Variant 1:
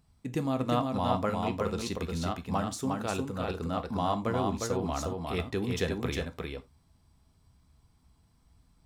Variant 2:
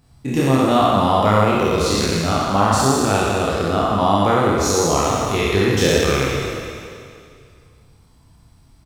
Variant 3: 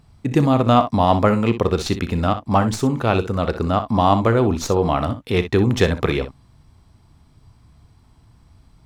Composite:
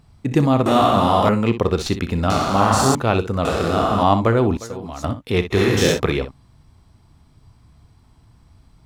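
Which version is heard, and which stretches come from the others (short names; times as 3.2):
3
0.66–1.29 from 2
2.3–2.95 from 2
3.45–4.03 from 2
4.57–5.04 from 1
5.55–5.95 from 2, crossfade 0.10 s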